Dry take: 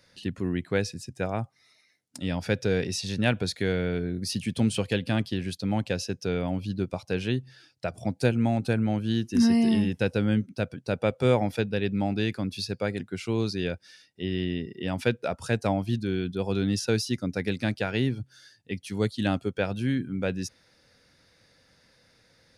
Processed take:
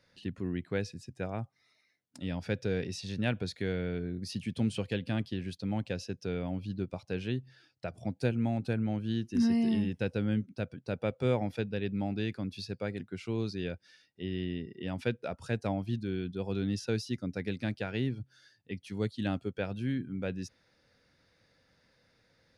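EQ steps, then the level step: dynamic EQ 940 Hz, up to -3 dB, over -41 dBFS, Q 0.7; high shelf 6300 Hz -11.5 dB; -5.5 dB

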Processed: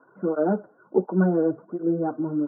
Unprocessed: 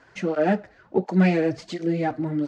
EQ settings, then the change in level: HPF 150 Hz 24 dB/oct; rippled Chebyshev low-pass 1500 Hz, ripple 6 dB; +2.0 dB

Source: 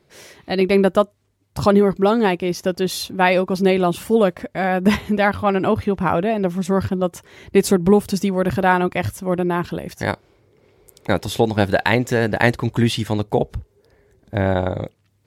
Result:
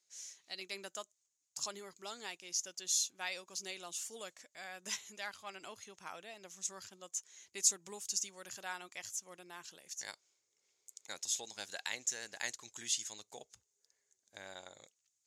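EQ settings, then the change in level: band-pass 6700 Hz, Q 6.1; +5.0 dB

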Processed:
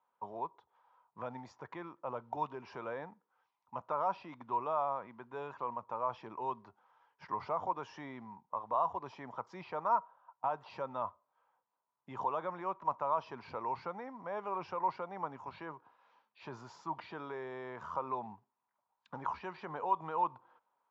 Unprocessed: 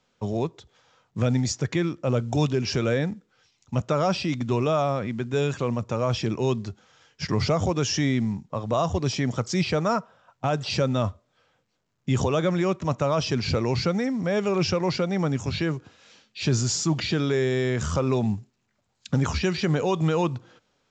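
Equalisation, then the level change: band-pass 960 Hz, Q 6.3; air absorption 110 m; +3.0 dB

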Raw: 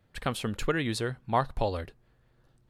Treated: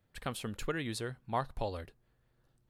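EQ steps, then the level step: high shelf 8800 Hz +7 dB; -7.5 dB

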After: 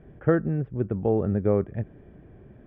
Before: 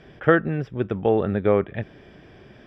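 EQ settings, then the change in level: Bessel low-pass 1800 Hz, order 4; tilt shelf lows +5.5 dB, about 650 Hz; low shelf 80 Hz +6.5 dB; -6.0 dB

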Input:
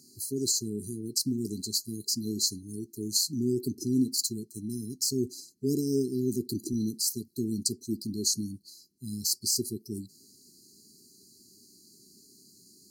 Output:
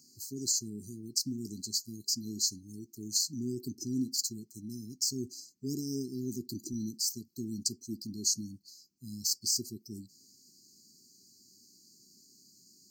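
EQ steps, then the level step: low shelf 240 Hz -7.5 dB; fixed phaser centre 2500 Hz, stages 8; 0.0 dB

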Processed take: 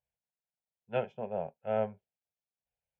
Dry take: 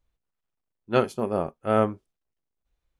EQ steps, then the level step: air absorption 87 m; speaker cabinet 140–4100 Hz, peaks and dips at 290 Hz -8 dB, 1100 Hz -4 dB, 1900 Hz -7 dB; fixed phaser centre 1200 Hz, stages 6; -5.0 dB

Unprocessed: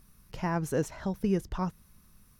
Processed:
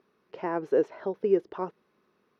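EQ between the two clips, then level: resonant high-pass 400 Hz, resonance Q 3.4; air absorption 300 m; 0.0 dB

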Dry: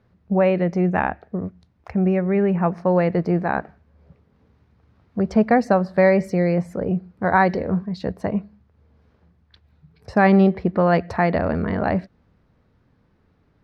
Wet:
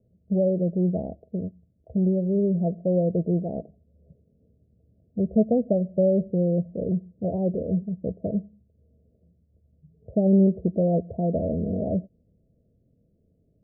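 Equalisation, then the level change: rippled Chebyshev low-pass 670 Hz, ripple 3 dB; -2.5 dB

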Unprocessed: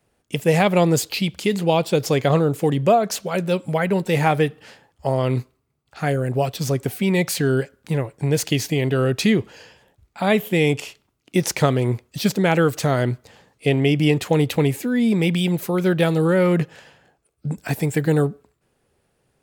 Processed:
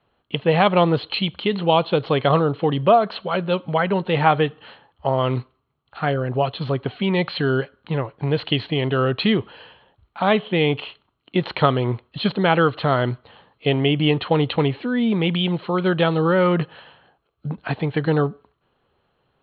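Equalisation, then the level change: rippled Chebyshev low-pass 4300 Hz, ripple 9 dB; +7.0 dB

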